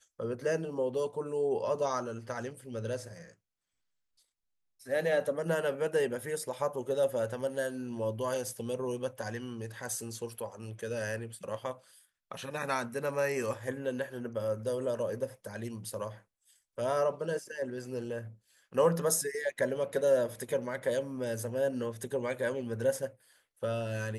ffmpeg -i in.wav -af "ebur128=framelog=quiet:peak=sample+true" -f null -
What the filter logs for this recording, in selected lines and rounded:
Integrated loudness:
  I:         -33.7 LUFS
  Threshold: -44.1 LUFS
Loudness range:
  LRA:         6.5 LU
  Threshold: -54.3 LUFS
  LRA low:   -37.9 LUFS
  LRA high:  -31.4 LUFS
Sample peak:
  Peak:      -14.8 dBFS
True peak:
  Peak:      -14.8 dBFS